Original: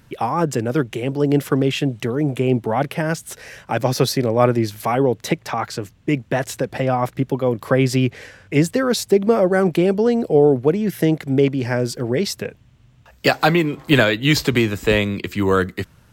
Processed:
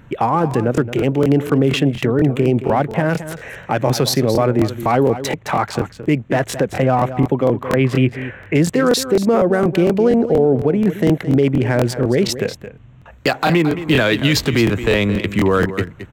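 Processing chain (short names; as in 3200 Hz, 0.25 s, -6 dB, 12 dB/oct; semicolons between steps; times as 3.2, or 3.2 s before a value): Wiener smoothing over 9 samples; 7.63–8.55 resonant high shelf 3700 Hz -11 dB, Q 1.5; in parallel at -2.5 dB: compressor, threshold -25 dBFS, peak gain reduction 15 dB; on the sum: limiter -9 dBFS, peak gain reduction 7.5 dB; on a send: echo 0.22 s -12.5 dB; on the sum: crackling interface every 0.24 s, samples 1024, repeat, from 0.49; gain +3 dB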